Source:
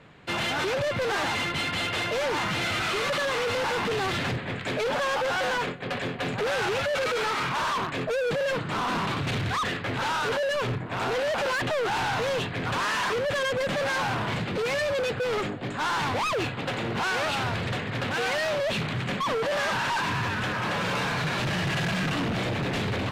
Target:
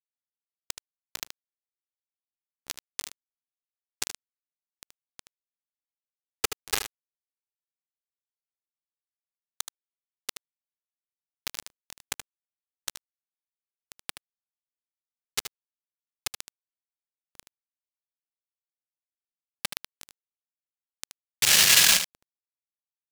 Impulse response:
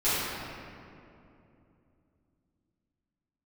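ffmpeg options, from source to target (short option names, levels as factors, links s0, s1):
-filter_complex "[0:a]bandreject=f=409:t=h:w=4,bandreject=f=818:t=h:w=4,bandreject=f=1227:t=h:w=4,bandreject=f=1636:t=h:w=4,bandreject=f=2045:t=h:w=4,bandreject=f=2454:t=h:w=4,bandreject=f=2863:t=h:w=4,asettb=1/sr,asplit=3[s0][s1][s2];[s0]atrim=end=21.424[s3];[s1]atrim=start=21.42:end=21.97,asetpts=PTS-STARTPTS,afade=t=in:d=0.004:c=qsin,afade=t=out:st=0.546:d=0.004:c=qsin,highshelf=f=3000:g=11.5[s4];[s2]atrim=start=21.966[s5];[s3][s4]acrossfade=d=0.004:c1=hsin:c2=qsin[s6];[s6][s5]acrossfade=d=0.004:c1=qsin:c2=hsin,acrusher=bits=3:mix=0:aa=0.000001,adynamicsmooth=sensitivity=4.5:basefreq=510,crystalizer=i=6:c=0,asplit=2[s7][s8];[s8]aecho=0:1:76:0.355[s9];[s7][s9]amix=inputs=2:normalize=0,volume=0.841"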